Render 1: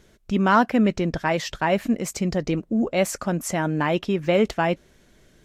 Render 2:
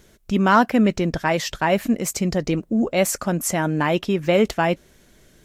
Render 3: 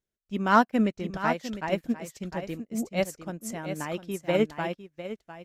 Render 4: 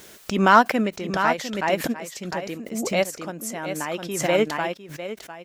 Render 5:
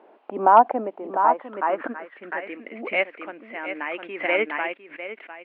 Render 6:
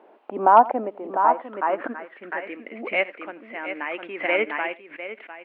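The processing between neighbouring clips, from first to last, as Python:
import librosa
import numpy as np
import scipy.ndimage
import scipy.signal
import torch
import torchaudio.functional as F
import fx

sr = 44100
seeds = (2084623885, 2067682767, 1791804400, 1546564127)

y1 = fx.high_shelf(x, sr, hz=8900.0, db=10.0)
y1 = y1 * librosa.db_to_amplitude(2.0)
y2 = y1 + 10.0 ** (-5.0 / 20.0) * np.pad(y1, (int(703 * sr / 1000.0), 0))[:len(y1)]
y2 = fx.upward_expand(y2, sr, threshold_db=-35.0, expansion=2.5)
y2 = y2 * librosa.db_to_amplitude(-3.0)
y3 = fx.highpass(y2, sr, hz=390.0, slope=6)
y3 = fx.pre_swell(y3, sr, db_per_s=54.0)
y3 = y3 * librosa.db_to_amplitude(6.0)
y4 = fx.filter_sweep_lowpass(y3, sr, from_hz=830.0, to_hz=2200.0, start_s=1.05, end_s=2.65, q=3.3)
y4 = fx.quant_dither(y4, sr, seeds[0], bits=10, dither='triangular')
y4 = scipy.signal.sosfilt(scipy.signal.ellip(3, 1.0, 40, [270.0, 2900.0], 'bandpass', fs=sr, output='sos'), y4)
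y4 = y4 * librosa.db_to_amplitude(-3.5)
y5 = y4 + 10.0 ** (-20.5 / 20.0) * np.pad(y4, (int(85 * sr / 1000.0), 0))[:len(y4)]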